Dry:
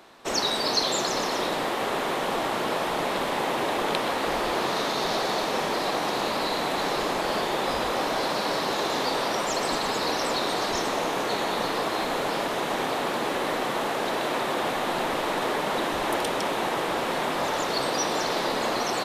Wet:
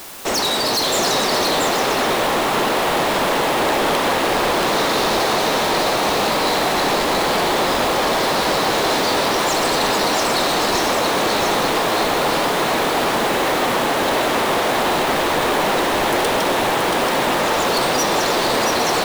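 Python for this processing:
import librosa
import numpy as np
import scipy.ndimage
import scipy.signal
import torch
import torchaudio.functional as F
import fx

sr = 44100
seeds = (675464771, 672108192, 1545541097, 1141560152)

p1 = fx.quant_dither(x, sr, seeds[0], bits=6, dither='triangular')
p2 = x + (p1 * 10.0 ** (-6.5 / 20.0))
p3 = np.clip(10.0 ** (23.0 / 20.0) * p2, -1.0, 1.0) / 10.0 ** (23.0 / 20.0)
p4 = p3 + 10.0 ** (-4.0 / 20.0) * np.pad(p3, (int(679 * sr / 1000.0), 0))[:len(p3)]
y = p4 * 10.0 ** (6.5 / 20.0)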